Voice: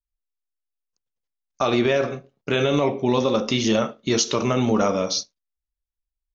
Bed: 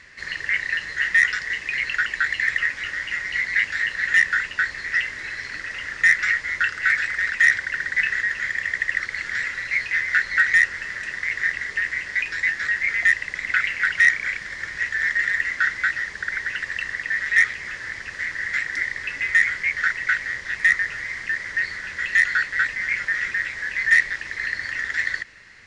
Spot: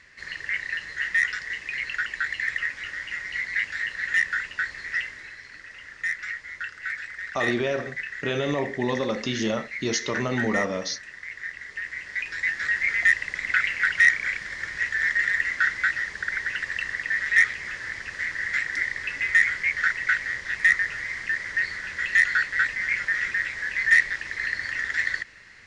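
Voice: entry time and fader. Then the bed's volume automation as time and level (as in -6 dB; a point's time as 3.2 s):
5.75 s, -6.0 dB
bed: 5 s -5.5 dB
5.41 s -12 dB
11.47 s -12 dB
12.75 s -1.5 dB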